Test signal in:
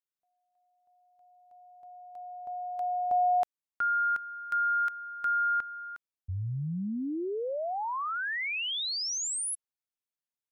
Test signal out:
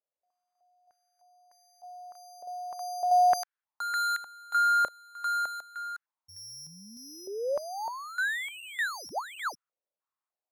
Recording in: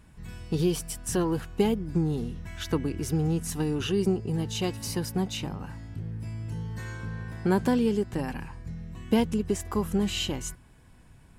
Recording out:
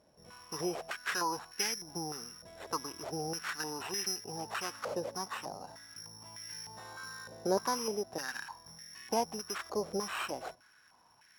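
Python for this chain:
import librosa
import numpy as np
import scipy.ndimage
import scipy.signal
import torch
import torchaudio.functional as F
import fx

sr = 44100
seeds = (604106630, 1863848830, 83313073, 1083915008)

y = (np.kron(x[::8], np.eye(8)[0]) * 8)[:len(x)]
y = fx.filter_held_bandpass(y, sr, hz=3.3, low_hz=570.0, high_hz=1800.0)
y = F.gain(torch.from_numpy(y), 5.5).numpy()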